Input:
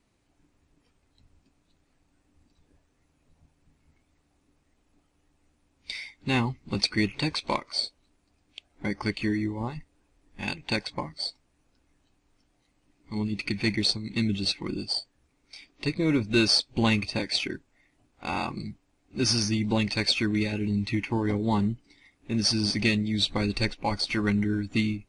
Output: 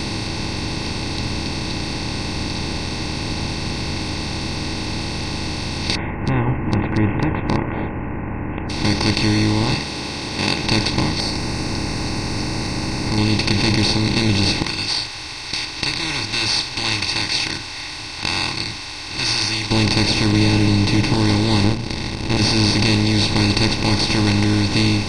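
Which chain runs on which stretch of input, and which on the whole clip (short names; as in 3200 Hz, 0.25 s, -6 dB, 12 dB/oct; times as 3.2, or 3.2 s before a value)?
5.95–8.7 steep low-pass 1800 Hz 96 dB/oct + dynamic EQ 100 Hz, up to +4 dB, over -38 dBFS, Q 0.95
9.74–10.64 HPF 560 Hz + doubler 14 ms -11 dB
11.2–13.18 G.711 law mismatch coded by mu + Butterworth band-stop 3300 Hz, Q 0.96 + compressor 1.5:1, threshold -53 dBFS
14.62–19.71 inverse Chebyshev high-pass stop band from 550 Hz, stop band 50 dB + gate -53 dBFS, range -7 dB
20.32–21.14 tilt shelf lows +8 dB, about 690 Hz + comb 6.7 ms, depth 92%
21.64–22.37 RIAA curve playback + upward compressor, threshold -26 dBFS + power-law curve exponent 2
whole clip: per-bin compression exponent 0.2; low shelf 93 Hz +8 dB; de-hum 58.09 Hz, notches 30; gain -2.5 dB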